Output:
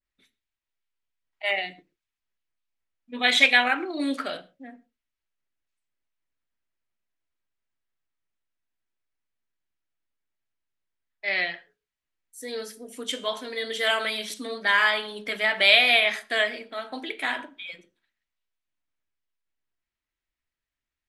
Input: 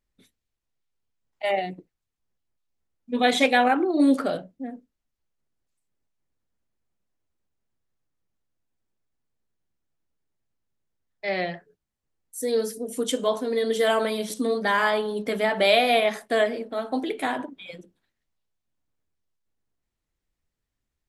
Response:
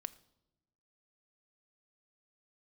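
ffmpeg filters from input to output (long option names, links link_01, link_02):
-filter_complex "[0:a]equalizer=frequency=2200:width=0.48:gain=13[link_01];[1:a]atrim=start_sample=2205,atrim=end_sample=6174[link_02];[link_01][link_02]afir=irnorm=-1:irlink=0,adynamicequalizer=threshold=0.0316:dfrequency=1600:dqfactor=0.7:tfrequency=1600:tqfactor=0.7:attack=5:release=100:ratio=0.375:range=4:mode=boostabove:tftype=highshelf,volume=-8.5dB"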